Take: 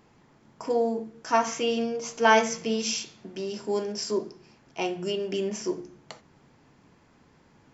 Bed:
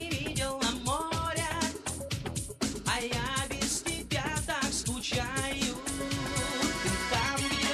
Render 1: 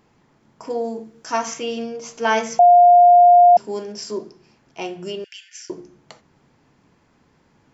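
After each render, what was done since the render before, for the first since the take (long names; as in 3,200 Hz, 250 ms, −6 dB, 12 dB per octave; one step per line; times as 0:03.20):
0:00.84–0:01.54: high-shelf EQ 4,900 Hz +8 dB
0:02.59–0:03.57: beep over 706 Hz −6.5 dBFS
0:05.24–0:05.70: linear-phase brick-wall high-pass 1,400 Hz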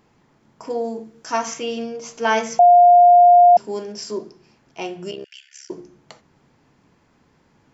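0:05.11–0:05.71: amplitude modulation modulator 69 Hz, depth 75%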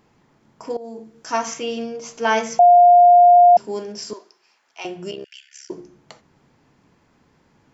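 0:00.77–0:01.35: fade in equal-power, from −17 dB
0:02.77–0:03.37: low-pass filter 3,700 Hz
0:04.13–0:04.85: high-pass filter 950 Hz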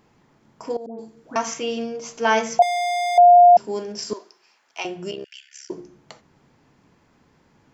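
0:00.86–0:01.36: all-pass dispersion highs, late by 130 ms, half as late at 1,200 Hz
0:02.62–0:03.18: gain into a clipping stage and back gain 22.5 dB
0:03.90–0:04.85: transient designer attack +6 dB, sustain +2 dB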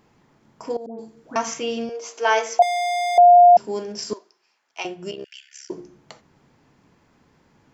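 0:01.89–0:03.18: Butterworth high-pass 320 Hz
0:04.14–0:05.19: expander for the loud parts, over −42 dBFS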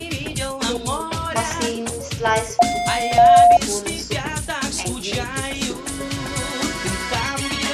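mix in bed +6.5 dB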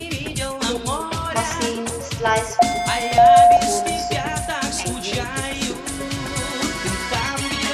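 delay with a band-pass on its return 133 ms, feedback 84%, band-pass 1,300 Hz, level −17 dB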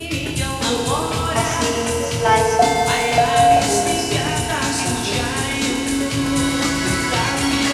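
double-tracking delay 25 ms −4 dB
feedback delay network reverb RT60 3.6 s, high-frequency decay 1×, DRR 1.5 dB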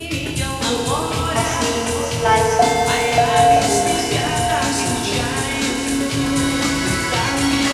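single-tap delay 1,048 ms −10 dB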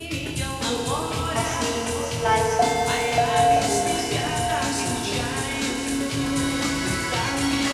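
level −5.5 dB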